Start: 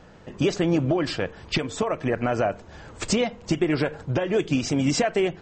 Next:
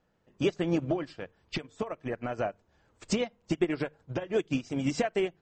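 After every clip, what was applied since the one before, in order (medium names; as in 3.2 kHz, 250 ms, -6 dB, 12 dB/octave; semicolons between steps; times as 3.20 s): hum notches 50/100/150 Hz; upward expansion 2.5:1, over -32 dBFS; trim -2.5 dB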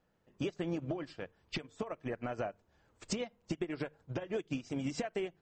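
compression 10:1, threshold -29 dBFS, peak gain reduction 9.5 dB; trim -3 dB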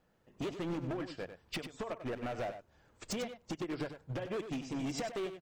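hard clipper -37 dBFS, distortion -8 dB; on a send: delay 96 ms -10 dB; on the sum: trim +3 dB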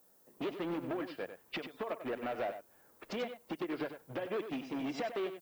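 level-controlled noise filter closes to 1.4 kHz, open at -35 dBFS; three-band isolator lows -17 dB, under 210 Hz, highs -23 dB, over 4.3 kHz; added noise violet -69 dBFS; trim +2 dB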